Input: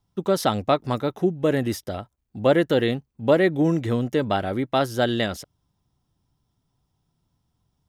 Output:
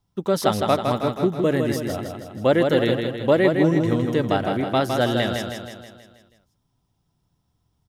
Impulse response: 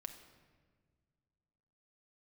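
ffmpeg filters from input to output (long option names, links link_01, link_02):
-af "aecho=1:1:160|320|480|640|800|960|1120:0.562|0.304|0.164|0.0885|0.0478|0.0258|0.0139"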